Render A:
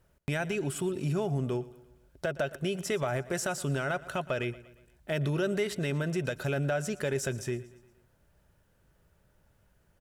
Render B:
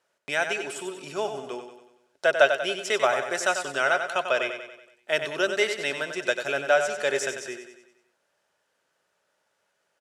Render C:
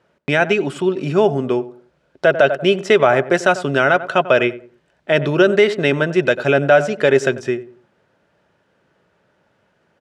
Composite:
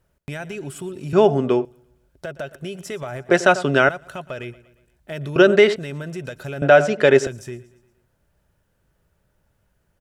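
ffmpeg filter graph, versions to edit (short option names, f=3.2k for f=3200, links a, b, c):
-filter_complex "[2:a]asplit=4[a][b][c][d];[0:a]asplit=5[e][f][g][h][i];[e]atrim=end=1.132[j];[a]atrim=start=1.128:end=1.652[k];[f]atrim=start=1.648:end=3.292[l];[b]atrim=start=3.288:end=3.892[m];[g]atrim=start=3.888:end=5.362[n];[c]atrim=start=5.358:end=5.762[o];[h]atrim=start=5.758:end=6.622[p];[d]atrim=start=6.618:end=7.272[q];[i]atrim=start=7.268[r];[j][k]acrossfade=d=0.004:c1=hsin:c2=hsin[s];[s][l]acrossfade=d=0.004:c1=hsin:c2=hsin[t];[t][m]acrossfade=d=0.004:c1=hsin:c2=hsin[u];[u][n]acrossfade=d=0.004:c1=hsin:c2=hsin[v];[v][o]acrossfade=d=0.004:c1=hsin:c2=hsin[w];[w][p]acrossfade=d=0.004:c1=hsin:c2=hsin[x];[x][q]acrossfade=d=0.004:c1=hsin:c2=hsin[y];[y][r]acrossfade=d=0.004:c1=hsin:c2=hsin"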